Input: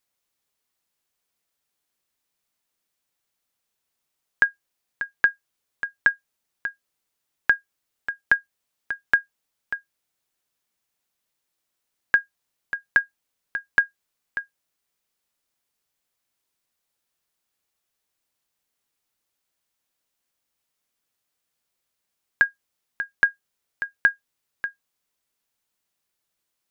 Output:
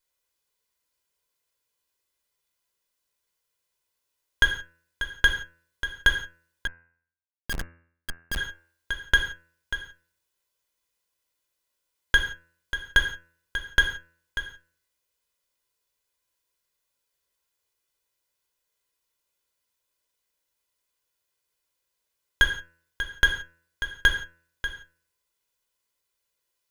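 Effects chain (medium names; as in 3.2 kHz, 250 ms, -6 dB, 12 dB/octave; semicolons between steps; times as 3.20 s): comb filter that takes the minimum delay 2 ms; gated-style reverb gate 200 ms falling, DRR 4 dB; 6.67–8.37 s: Schmitt trigger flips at -25 dBFS; de-hum 83.76 Hz, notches 33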